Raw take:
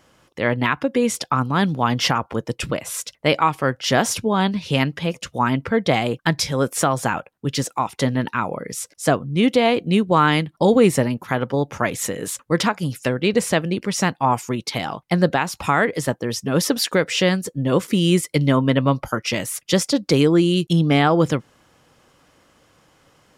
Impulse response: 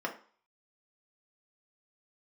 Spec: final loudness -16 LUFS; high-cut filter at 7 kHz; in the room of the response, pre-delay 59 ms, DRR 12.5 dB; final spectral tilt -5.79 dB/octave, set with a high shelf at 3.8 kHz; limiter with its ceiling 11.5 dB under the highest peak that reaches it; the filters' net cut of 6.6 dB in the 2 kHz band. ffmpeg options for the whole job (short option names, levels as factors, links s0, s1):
-filter_complex "[0:a]lowpass=7000,equalizer=f=2000:t=o:g=-6.5,highshelf=f=3800:g=-8,alimiter=limit=0.141:level=0:latency=1,asplit=2[s0][s1];[1:a]atrim=start_sample=2205,adelay=59[s2];[s1][s2]afir=irnorm=-1:irlink=0,volume=0.126[s3];[s0][s3]amix=inputs=2:normalize=0,volume=3.76"